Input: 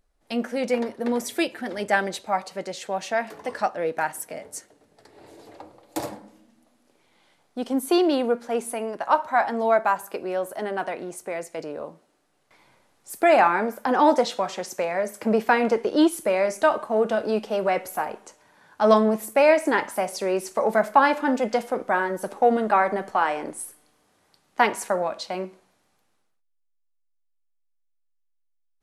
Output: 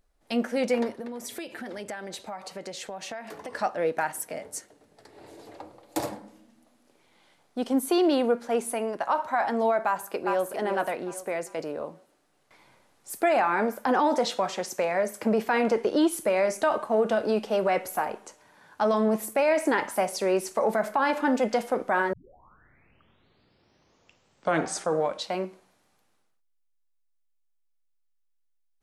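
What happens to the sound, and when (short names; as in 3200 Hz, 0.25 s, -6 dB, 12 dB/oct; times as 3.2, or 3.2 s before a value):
0.96–3.54 compressor 8:1, threshold -33 dBFS
9.86–10.55 echo throw 0.4 s, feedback 35%, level -7.5 dB
22.13 tape start 3.23 s
whole clip: limiter -15 dBFS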